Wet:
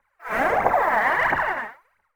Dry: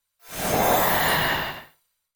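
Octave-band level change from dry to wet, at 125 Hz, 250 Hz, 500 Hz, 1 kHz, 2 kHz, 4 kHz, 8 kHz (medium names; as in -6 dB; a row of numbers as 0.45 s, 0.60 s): -8.5 dB, -4.0 dB, +1.0 dB, +3.5 dB, +3.5 dB, -14.5 dB, under -15 dB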